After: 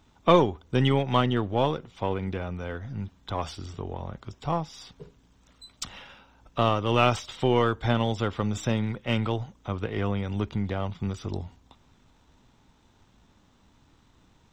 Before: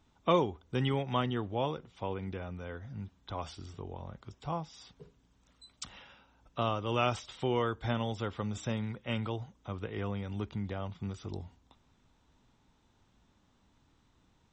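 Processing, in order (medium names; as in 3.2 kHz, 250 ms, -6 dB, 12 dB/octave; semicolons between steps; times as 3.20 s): partial rectifier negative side -3 dB; trim +9 dB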